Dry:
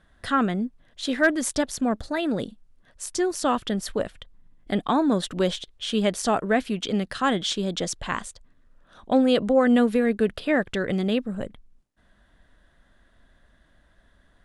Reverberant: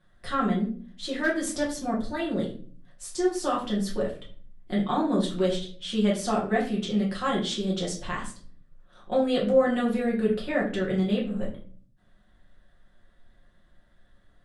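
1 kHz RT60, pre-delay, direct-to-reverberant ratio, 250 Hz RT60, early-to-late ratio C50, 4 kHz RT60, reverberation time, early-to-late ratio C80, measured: 0.40 s, 5 ms, -5.0 dB, 0.80 s, 8.0 dB, 0.35 s, 0.45 s, 12.5 dB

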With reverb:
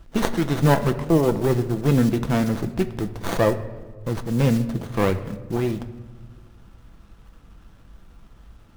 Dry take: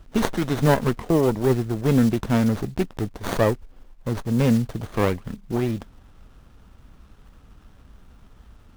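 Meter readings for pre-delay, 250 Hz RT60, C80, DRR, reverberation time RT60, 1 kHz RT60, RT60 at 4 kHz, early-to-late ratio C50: 6 ms, 2.1 s, 15.5 dB, 8.0 dB, 1.4 s, 1.2 s, 0.80 s, 13.5 dB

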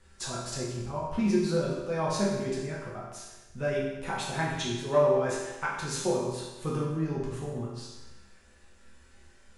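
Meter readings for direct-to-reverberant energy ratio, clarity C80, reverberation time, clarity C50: -6.5 dB, 3.5 dB, 1.1 s, 1.0 dB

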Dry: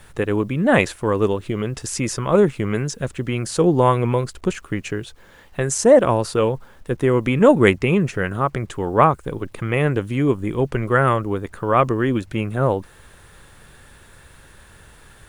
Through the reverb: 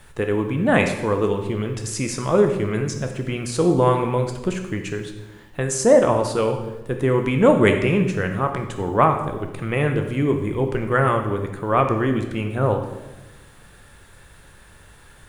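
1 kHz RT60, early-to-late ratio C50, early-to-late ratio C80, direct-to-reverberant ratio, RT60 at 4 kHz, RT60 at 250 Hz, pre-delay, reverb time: 1.0 s, 7.0 dB, 9.5 dB, 5.0 dB, 0.90 s, 1.3 s, 12 ms, 1.1 s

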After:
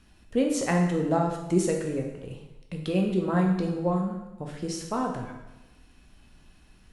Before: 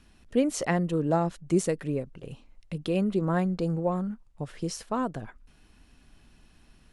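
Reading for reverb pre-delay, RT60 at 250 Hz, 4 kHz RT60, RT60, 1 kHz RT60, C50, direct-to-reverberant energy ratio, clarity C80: 5 ms, 1.0 s, 0.95 s, 1.0 s, 1.0 s, 5.0 dB, 1.0 dB, 7.5 dB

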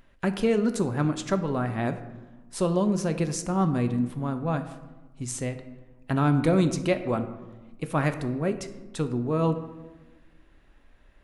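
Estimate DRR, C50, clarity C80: 8.0 dB, 11.5 dB, 13.0 dB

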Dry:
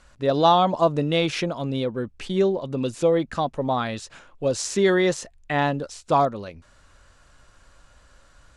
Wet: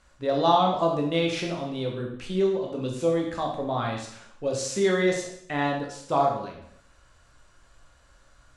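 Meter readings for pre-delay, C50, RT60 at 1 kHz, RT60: 6 ms, 4.5 dB, 0.70 s, 0.70 s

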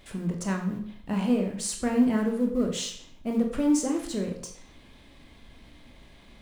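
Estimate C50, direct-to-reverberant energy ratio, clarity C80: 7.5 dB, 2.0 dB, 10.5 dB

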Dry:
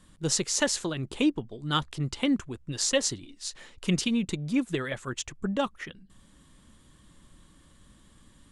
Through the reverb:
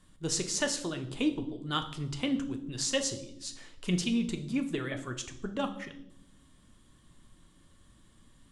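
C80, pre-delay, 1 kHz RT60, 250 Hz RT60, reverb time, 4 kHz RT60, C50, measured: 15.0 dB, 3 ms, 0.65 s, 1.3 s, 0.75 s, 0.65 s, 12.0 dB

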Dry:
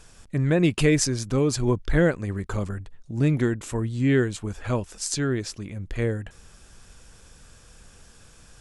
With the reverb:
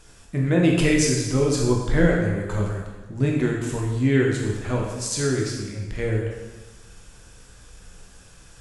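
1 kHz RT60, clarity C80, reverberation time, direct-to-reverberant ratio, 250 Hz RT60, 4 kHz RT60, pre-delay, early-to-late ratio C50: 1.2 s, 4.0 dB, 1.2 s, -2.0 dB, 1.2 s, 1.1 s, 7 ms, 2.0 dB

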